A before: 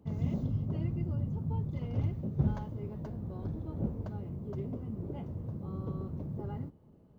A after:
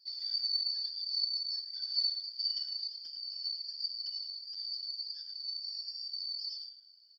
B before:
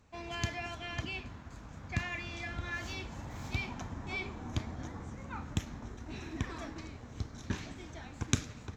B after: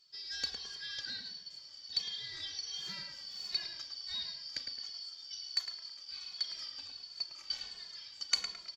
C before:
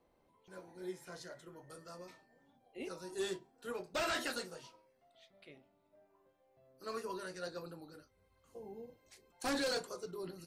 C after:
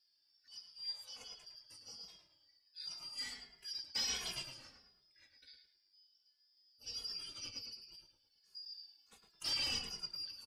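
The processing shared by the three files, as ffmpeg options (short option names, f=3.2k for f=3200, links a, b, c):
-filter_complex "[0:a]afftfilt=real='real(if(lt(b,272),68*(eq(floor(b/68),0)*3+eq(floor(b/68),1)*2+eq(floor(b/68),2)*1+eq(floor(b/68),3)*0)+mod(b,68),b),0)':imag='imag(if(lt(b,272),68*(eq(floor(b/68),0)*3+eq(floor(b/68),1)*2+eq(floor(b/68),2)*1+eq(floor(b/68),3)*0)+mod(b,68),b),0)':win_size=2048:overlap=0.75,asplit=2[a][b];[b]adelay=108,lowpass=f=2.3k:p=1,volume=-4dB,asplit=2[c][d];[d]adelay=108,lowpass=f=2.3k:p=1,volume=0.47,asplit=2[e][f];[f]adelay=108,lowpass=f=2.3k:p=1,volume=0.47,asplit=2[g][h];[h]adelay=108,lowpass=f=2.3k:p=1,volume=0.47,asplit=2[i][j];[j]adelay=108,lowpass=f=2.3k:p=1,volume=0.47,asplit=2[k][l];[l]adelay=108,lowpass=f=2.3k:p=1,volume=0.47[m];[c][e][g][i][k][m]amix=inputs=6:normalize=0[n];[a][n]amix=inputs=2:normalize=0,asplit=2[o][p];[p]adelay=2.4,afreqshift=-1.4[q];[o][q]amix=inputs=2:normalize=1"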